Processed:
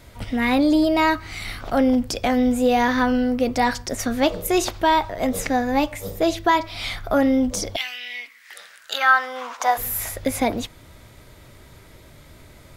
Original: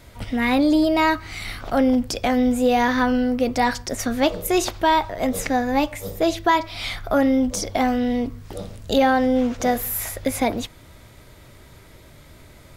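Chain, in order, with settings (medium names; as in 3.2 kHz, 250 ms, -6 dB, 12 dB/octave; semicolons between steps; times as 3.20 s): 7.75–9.77 s: resonant high-pass 2.9 kHz -> 890 Hz, resonance Q 5.4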